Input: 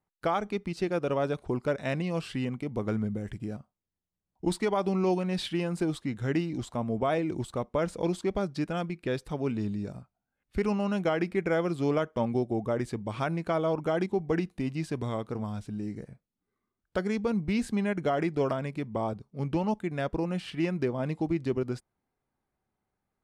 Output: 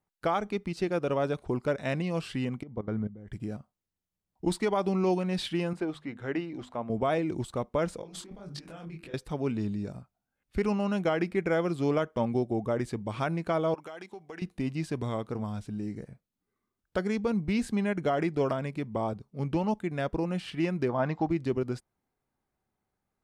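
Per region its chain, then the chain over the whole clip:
2.63–3.32 level quantiser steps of 15 dB + Butterworth band-stop 2600 Hz, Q 6.8 + tape spacing loss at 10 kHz 26 dB
5.73–6.9 tone controls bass -11 dB, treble -14 dB + upward compressor, threshold -48 dBFS + notches 50/100/150/200/250 Hz
7.98–9.14 negative-ratio compressor -39 dBFS + notches 50/100/150/200/250/300/350/400/450 Hz + detuned doubles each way 59 cents
13.74–14.42 HPF 1200 Hz 6 dB/oct + compressor 4:1, threshold -39 dBFS
20.89–21.3 steep low-pass 6300 Hz + band shelf 1100 Hz +8.5 dB
whole clip: dry

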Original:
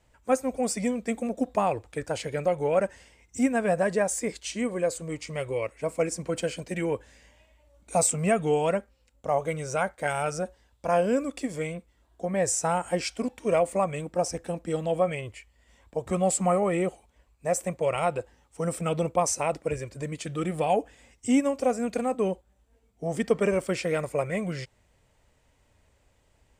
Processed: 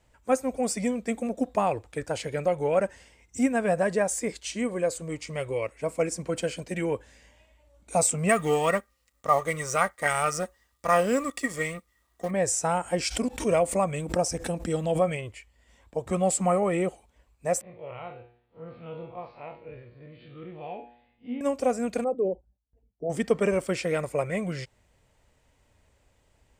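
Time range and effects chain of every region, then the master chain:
8.29–12.31 G.711 law mismatch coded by A + high shelf 3400 Hz +9 dB + small resonant body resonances 1200/1900 Hz, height 18 dB, ringing for 50 ms
12.98–15.17 tone controls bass +3 dB, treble +4 dB + backwards sustainer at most 140 dB/s
17.61–21.41 time blur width 89 ms + steep low-pass 4400 Hz 96 dB/oct + resonator 120 Hz, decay 0.59 s, mix 80%
22.04–23.1 formant sharpening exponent 2 + gate with hold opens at -57 dBFS, closes at -67 dBFS
whole clip: dry

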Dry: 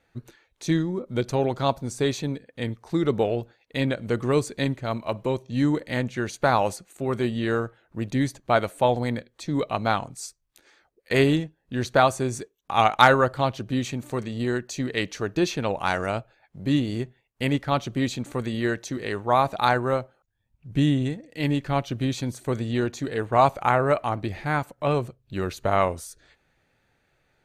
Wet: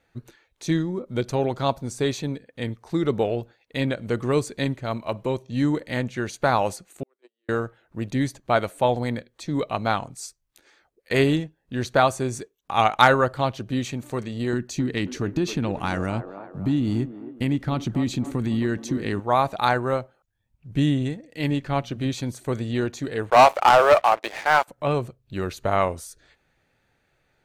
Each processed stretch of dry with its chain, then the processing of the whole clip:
7.03–7.49 gate -19 dBFS, range -47 dB + Chebyshev band-pass 290–9100 Hz, order 5
14.53–19.2 resonant low shelf 370 Hz +6.5 dB, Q 1.5 + compressor 4:1, threshold -19 dBFS + band-limited delay 0.268 s, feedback 49%, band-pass 610 Hz, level -8.5 dB
21.5–22.13 high shelf 11000 Hz -6.5 dB + notches 60/120/180/240 Hz
23.3–24.68 HPF 510 Hz 24 dB/oct + high shelf 4200 Hz -6 dB + sample leveller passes 3
whole clip: dry

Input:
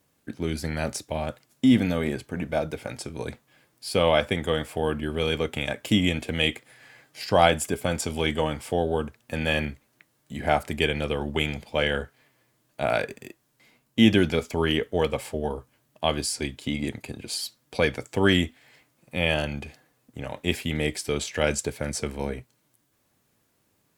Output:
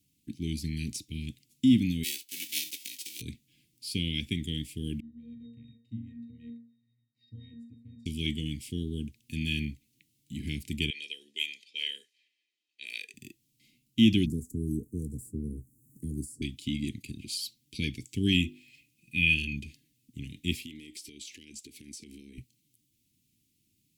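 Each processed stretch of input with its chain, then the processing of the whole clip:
2.03–3.2 spectral whitening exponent 0.3 + HPF 590 Hz + comb 3.1 ms, depth 35%
5–8.06 octave resonator A#, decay 0.47 s + flutter echo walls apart 7.3 m, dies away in 0.22 s
10.9–13.14 low-pass opened by the level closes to 2800 Hz, open at -21 dBFS + HPF 510 Hz 24 dB/oct + comb 1.6 ms, depth 44%
14.26–16.42 elliptic band-stop 620–8000 Hz, stop band 70 dB + three-band squash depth 70%
18.32–19.57 notches 50/100/150/200/250/300/350/400/450 Hz + small resonant body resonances 1200/2500 Hz, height 14 dB, ringing for 20 ms
20.64–22.38 resonant low shelf 200 Hz -10.5 dB, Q 1.5 + compressor 10:1, threshold -35 dBFS + hard clip -29 dBFS
whole clip: dynamic EQ 8100 Hz, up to -3 dB, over -42 dBFS, Q 1; inverse Chebyshev band-stop 560–1400 Hz, stop band 50 dB; gain -2.5 dB

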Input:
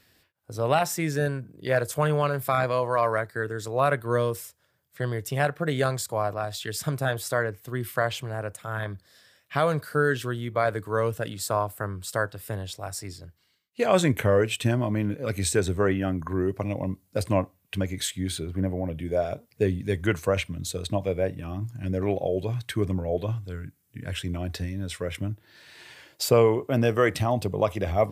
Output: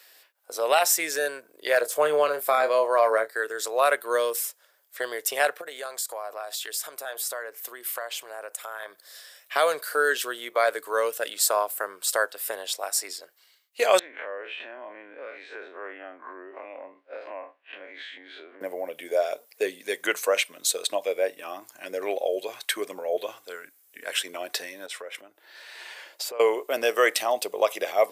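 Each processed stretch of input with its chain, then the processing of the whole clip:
1.81–3.33 de-esser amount 55% + tilt shelf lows +5.5 dB, about 940 Hz + doubler 27 ms -9.5 dB
5.61–9.56 high shelf 5600 Hz +5 dB + compressor 3:1, threshold -40 dBFS
13.99–18.61 time blur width 83 ms + compressor, threshold -35 dBFS + speaker cabinet 270–2800 Hz, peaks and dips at 270 Hz +5 dB, 450 Hz -3 dB, 1700 Hz +4 dB
24.86–26.4 high shelf 4600 Hz -8 dB + compressor 5:1, threshold -38 dBFS
whole clip: dynamic EQ 910 Hz, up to -6 dB, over -37 dBFS, Q 0.71; HPF 490 Hz 24 dB/oct; high shelf 7900 Hz +6.5 dB; gain +7 dB

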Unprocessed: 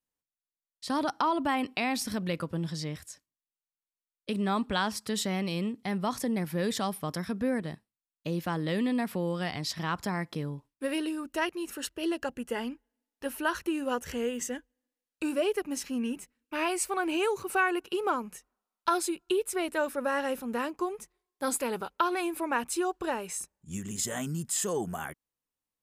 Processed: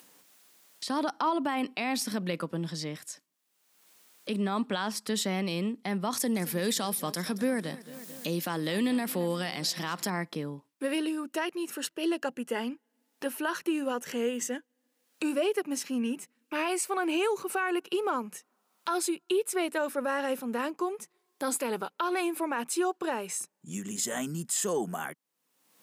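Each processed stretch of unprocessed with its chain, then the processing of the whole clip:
6.13–10.1 high shelf 3600 Hz +10.5 dB + upward compressor, threshold -31 dBFS + warbling echo 0.223 s, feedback 52%, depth 84 cents, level -19 dB
whole clip: upward compressor, threshold -35 dBFS; HPF 170 Hz 24 dB/oct; limiter -21 dBFS; gain +1.5 dB

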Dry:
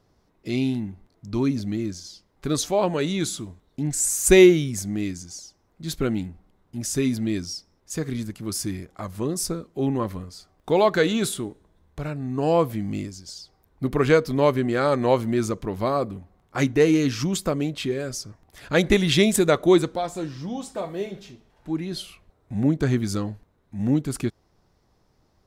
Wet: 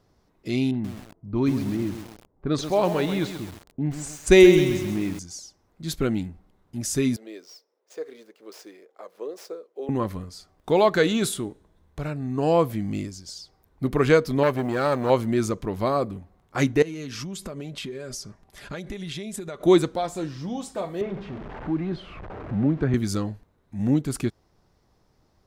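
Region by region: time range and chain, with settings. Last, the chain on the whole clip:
0.71–5.19 low-pass opened by the level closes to 680 Hz, open at -14.5 dBFS + lo-fi delay 0.131 s, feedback 55%, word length 6-bit, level -8.5 dB
7.16–9.89 median filter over 5 samples + ladder high-pass 420 Hz, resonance 65%
14.43–15.1 G.711 law mismatch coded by A + core saturation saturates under 840 Hz
16.82–19.61 comb 5 ms, depth 38% + compressor 16:1, threshold -30 dBFS + brick-wall FIR low-pass 13000 Hz
21.01–22.94 zero-crossing step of -36 dBFS + LPF 1800 Hz + three-band squash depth 40%
whole clip: dry

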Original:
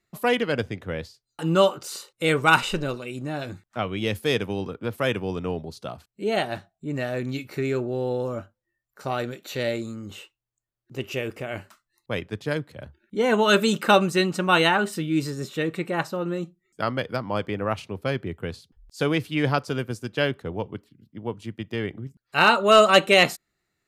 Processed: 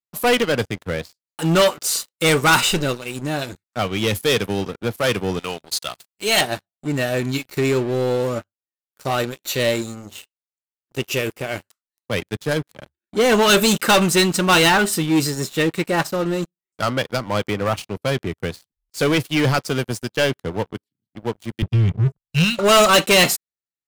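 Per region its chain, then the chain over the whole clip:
5.39–6.41 tilt shelf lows -10 dB, about 840 Hz + notch 5600 Hz
21.62–22.59 Chebyshev band-stop 170–2500 Hz, order 3 + tilt -4.5 dB/oct
whole clip: high shelf 4000 Hz +11.5 dB; sample leveller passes 5; upward expander 1.5:1, over -26 dBFS; gain -8 dB

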